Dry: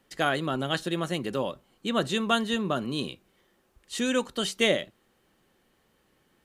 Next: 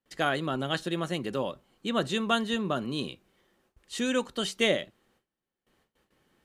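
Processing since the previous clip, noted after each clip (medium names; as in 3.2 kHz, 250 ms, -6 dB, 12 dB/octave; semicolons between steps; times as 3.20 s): gate with hold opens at -57 dBFS; treble shelf 10 kHz -5 dB; trim -1.5 dB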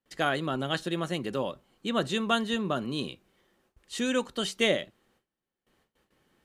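no audible change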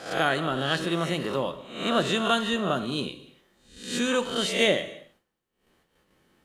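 reverse spectral sustain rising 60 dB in 0.55 s; gated-style reverb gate 330 ms falling, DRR 10 dB; trim +1.5 dB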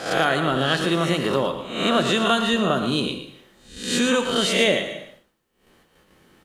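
compression 2:1, threshold -29 dBFS, peak gain reduction 7 dB; on a send: delay 115 ms -10 dB; on the sum: trim +9 dB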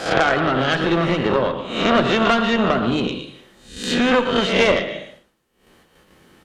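low-pass that closes with the level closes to 2.7 kHz, closed at -20 dBFS; Chebyshev shaper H 4 -14 dB, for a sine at -6 dBFS; trim +4 dB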